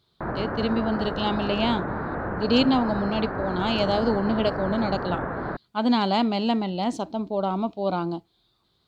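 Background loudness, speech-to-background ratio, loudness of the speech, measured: -30.5 LUFS, 5.0 dB, -25.5 LUFS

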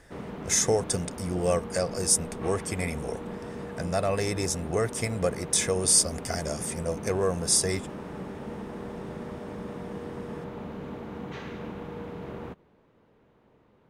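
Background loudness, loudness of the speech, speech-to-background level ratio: -38.5 LUFS, -26.5 LUFS, 12.0 dB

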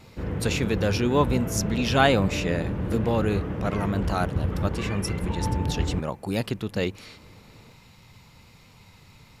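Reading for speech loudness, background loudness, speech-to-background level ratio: -27.0 LUFS, -30.0 LUFS, 3.0 dB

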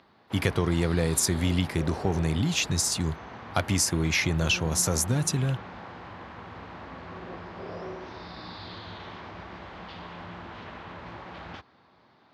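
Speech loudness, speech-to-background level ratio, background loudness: -26.0 LUFS, 15.0 dB, -41.0 LUFS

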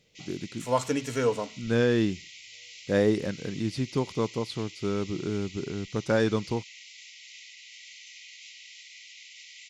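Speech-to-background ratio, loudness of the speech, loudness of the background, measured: 16.0 dB, -29.0 LUFS, -45.0 LUFS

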